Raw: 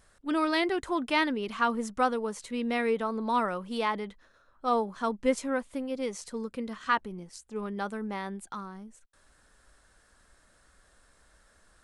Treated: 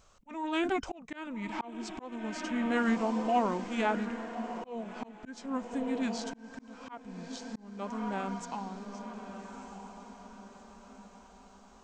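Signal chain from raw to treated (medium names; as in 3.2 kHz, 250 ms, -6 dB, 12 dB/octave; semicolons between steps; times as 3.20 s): formant shift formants -5 st; echo that smears into a reverb 1249 ms, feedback 43%, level -9.5 dB; slow attack 488 ms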